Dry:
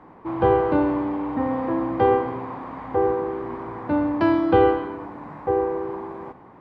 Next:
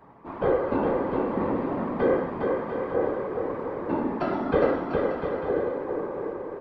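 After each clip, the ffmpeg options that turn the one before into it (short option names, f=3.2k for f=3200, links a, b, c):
-filter_complex "[0:a]aecho=1:1:4.5:0.63,afftfilt=real='hypot(re,im)*cos(2*PI*random(0))':imag='hypot(re,im)*sin(2*PI*random(1))':win_size=512:overlap=0.75,asplit=2[a][b];[b]aecho=0:1:410|697|897.9|1039|1137:0.631|0.398|0.251|0.158|0.1[c];[a][c]amix=inputs=2:normalize=0"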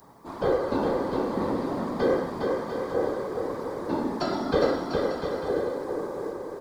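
-af "aexciter=amount=9.9:drive=7.3:freq=4k,volume=-1dB"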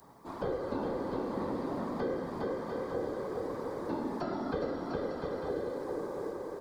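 -filter_complex "[0:a]acrossover=split=310|2200[a][b][c];[a]acompressor=threshold=-33dB:ratio=4[d];[b]acompressor=threshold=-31dB:ratio=4[e];[c]acompressor=threshold=-55dB:ratio=4[f];[d][e][f]amix=inputs=3:normalize=0,volume=-4dB"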